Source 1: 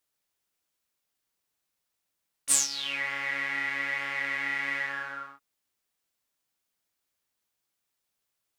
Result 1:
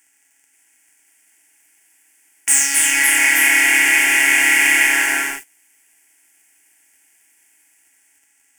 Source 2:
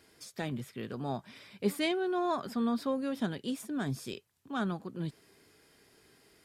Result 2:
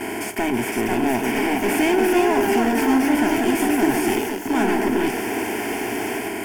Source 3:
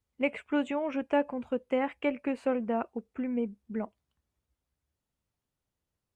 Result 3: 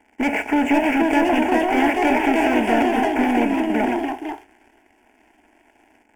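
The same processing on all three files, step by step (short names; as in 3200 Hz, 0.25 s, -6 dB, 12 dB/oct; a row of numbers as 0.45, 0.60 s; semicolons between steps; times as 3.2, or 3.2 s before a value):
per-bin compression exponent 0.4; gate -42 dBFS, range -8 dB; sample leveller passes 3; echoes that change speed 0.534 s, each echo +2 st, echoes 3; fixed phaser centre 800 Hz, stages 8; gain +2 dB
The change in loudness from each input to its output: +16.0, +14.5, +13.0 LU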